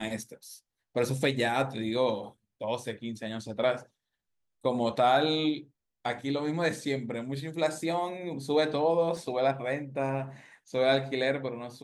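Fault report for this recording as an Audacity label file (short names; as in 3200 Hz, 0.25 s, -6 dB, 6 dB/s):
9.170000	9.170000	gap 2.2 ms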